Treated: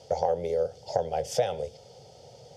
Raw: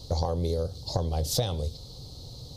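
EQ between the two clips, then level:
band-pass filter 320–4,500 Hz
phaser with its sweep stopped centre 1,100 Hz, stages 6
+7.5 dB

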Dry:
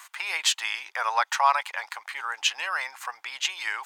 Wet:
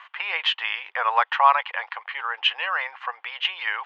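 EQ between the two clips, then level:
loudspeaker in its box 330–3,100 Hz, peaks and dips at 490 Hz +10 dB, 750 Hz +3 dB, 1,100 Hz +5 dB, 1,800 Hz +4 dB, 3,000 Hz +8 dB
0.0 dB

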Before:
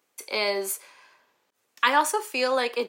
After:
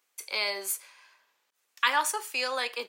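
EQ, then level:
tilt shelving filter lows −8 dB, about 640 Hz
−8.5 dB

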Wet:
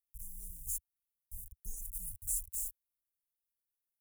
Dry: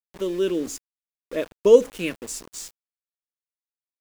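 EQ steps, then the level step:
inverse Chebyshev band-stop filter 250–3,600 Hz, stop band 60 dB
+8.0 dB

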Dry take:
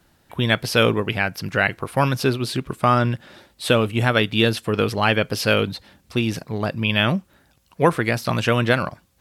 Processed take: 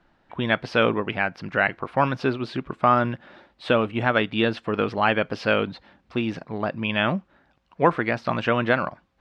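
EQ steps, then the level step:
head-to-tape spacing loss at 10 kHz 36 dB
parametric band 91 Hz −14 dB 2.3 octaves
parametric band 440 Hz −4.5 dB 0.75 octaves
+4.5 dB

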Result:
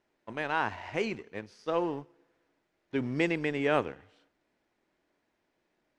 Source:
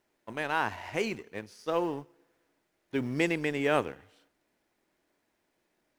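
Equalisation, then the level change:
high-frequency loss of the air 83 metres
0.0 dB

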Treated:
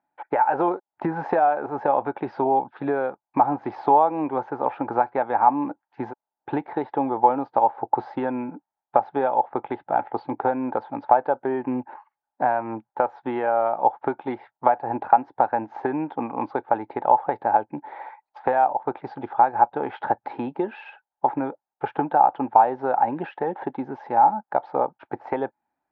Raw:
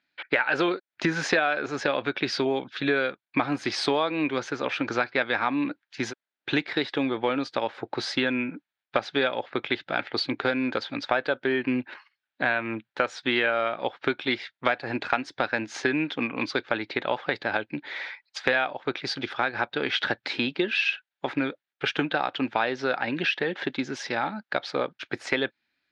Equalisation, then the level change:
low-pass with resonance 850 Hz, resonance Q 8.2
−1.0 dB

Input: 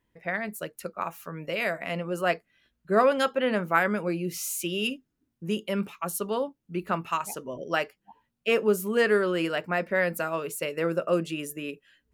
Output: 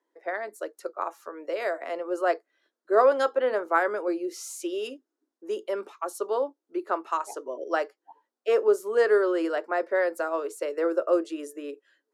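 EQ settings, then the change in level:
Butterworth high-pass 310 Hz 48 dB per octave
high-frequency loss of the air 70 metres
parametric band 2,600 Hz −14.5 dB 0.91 octaves
+3.0 dB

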